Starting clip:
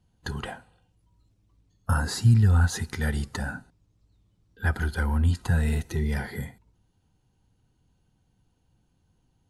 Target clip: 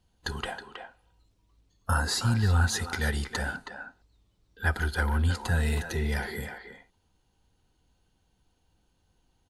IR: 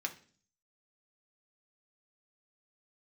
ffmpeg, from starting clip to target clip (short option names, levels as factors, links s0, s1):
-filter_complex "[0:a]equalizer=f=125:t=o:w=1:g=-10,equalizer=f=250:t=o:w=1:g=-3,equalizer=f=4000:t=o:w=1:g=3,asplit=2[s0][s1];[s1]adelay=320,highpass=300,lowpass=3400,asoftclip=type=hard:threshold=0.0794,volume=0.447[s2];[s0][s2]amix=inputs=2:normalize=0,volume=1.19"